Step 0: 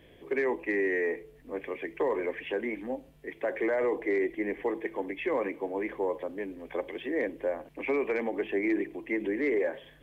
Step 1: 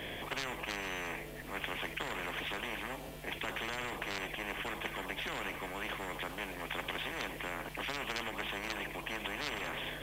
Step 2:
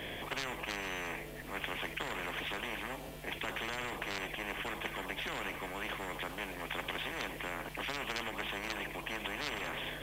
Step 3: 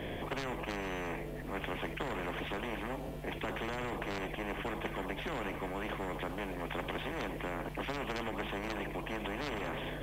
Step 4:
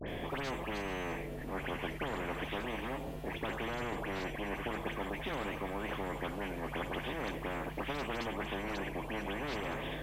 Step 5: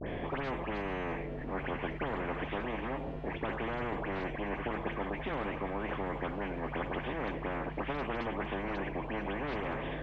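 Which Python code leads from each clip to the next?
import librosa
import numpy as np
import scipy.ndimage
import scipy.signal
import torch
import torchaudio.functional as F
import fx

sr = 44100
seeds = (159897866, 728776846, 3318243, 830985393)

y1 = fx.spectral_comp(x, sr, ratio=10.0)
y1 = y1 * librosa.db_to_amplitude(-1.5)
y2 = y1
y3 = fx.tilt_shelf(y2, sr, db=6.5, hz=1200.0)
y4 = fx.vibrato(y3, sr, rate_hz=0.42, depth_cents=46.0)
y4 = fx.dispersion(y4, sr, late='highs', ms=72.0, hz=2200.0)
y5 = scipy.signal.sosfilt(scipy.signal.butter(2, 2300.0, 'lowpass', fs=sr, output='sos'), y4)
y5 = y5 * librosa.db_to_amplitude(2.5)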